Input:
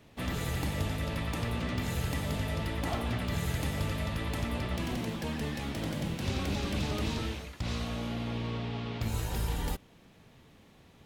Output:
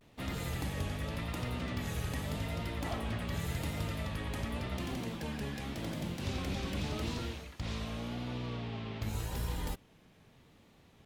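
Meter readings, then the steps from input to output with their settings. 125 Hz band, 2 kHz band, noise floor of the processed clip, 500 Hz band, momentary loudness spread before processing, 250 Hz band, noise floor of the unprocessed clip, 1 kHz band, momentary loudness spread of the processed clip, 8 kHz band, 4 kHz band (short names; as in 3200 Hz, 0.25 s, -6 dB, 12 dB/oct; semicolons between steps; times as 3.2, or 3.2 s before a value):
-4.0 dB, -4.0 dB, -62 dBFS, -4.0 dB, 3 LU, -4.0 dB, -58 dBFS, -4.0 dB, 3 LU, -4.0 dB, -4.0 dB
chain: vibrato 0.87 Hz 88 cents; gain -4 dB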